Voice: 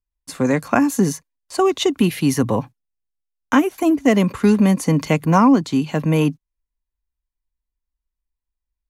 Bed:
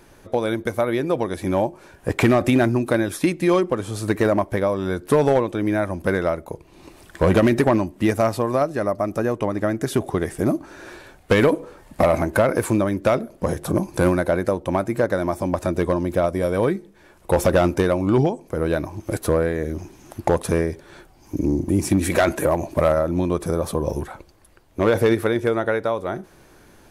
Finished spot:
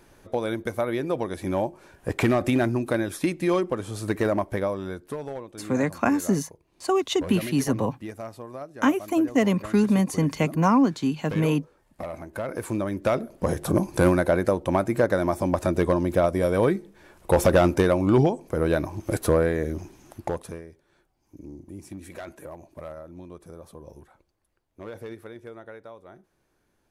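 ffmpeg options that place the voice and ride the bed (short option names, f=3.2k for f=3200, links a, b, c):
-filter_complex "[0:a]adelay=5300,volume=-6dB[a];[1:a]volume=11.5dB,afade=t=out:st=4.62:d=0.55:silence=0.237137,afade=t=in:st=12.29:d=1.35:silence=0.149624,afade=t=out:st=19.54:d=1.07:silence=0.1[b];[a][b]amix=inputs=2:normalize=0"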